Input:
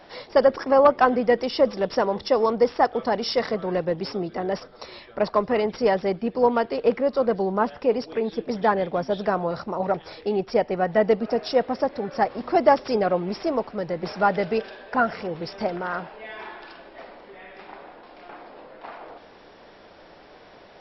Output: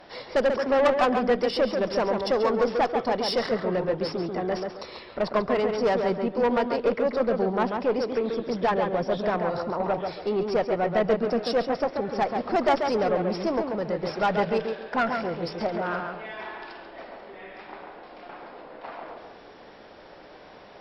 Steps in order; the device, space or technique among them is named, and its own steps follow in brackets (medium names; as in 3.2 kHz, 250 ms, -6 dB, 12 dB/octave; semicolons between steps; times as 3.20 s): rockabilly slapback (valve stage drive 17 dB, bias 0.25; tape echo 138 ms, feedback 32%, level -3 dB, low-pass 2.1 kHz)